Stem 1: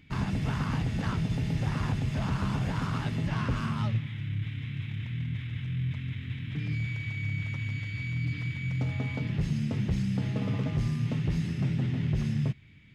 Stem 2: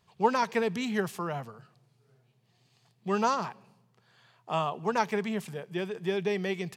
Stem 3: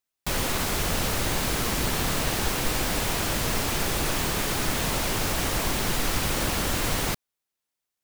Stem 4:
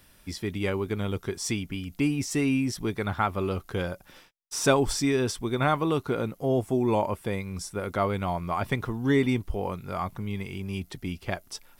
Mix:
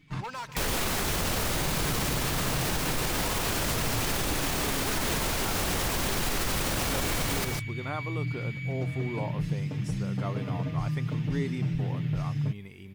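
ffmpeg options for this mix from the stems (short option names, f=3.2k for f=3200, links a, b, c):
-filter_complex "[0:a]aecho=1:1:6.6:0.96,volume=-5.5dB[a];[1:a]highpass=f=1.5k:p=1,asoftclip=type=hard:threshold=-32dB,volume=-1.5dB,asplit=3[b][c][d];[c]volume=-15dB[e];[2:a]adelay=300,volume=1.5dB,asplit=2[f][g];[g]volume=-9dB[h];[3:a]adelay=2250,volume=-11dB[i];[d]apad=whole_len=571005[j];[a][j]sidechaincompress=threshold=-59dB:ratio=8:attack=16:release=192[k];[e][h]amix=inputs=2:normalize=0,aecho=0:1:148:1[l];[k][b][f][i][l]amix=inputs=5:normalize=0,alimiter=limit=-19dB:level=0:latency=1:release=40"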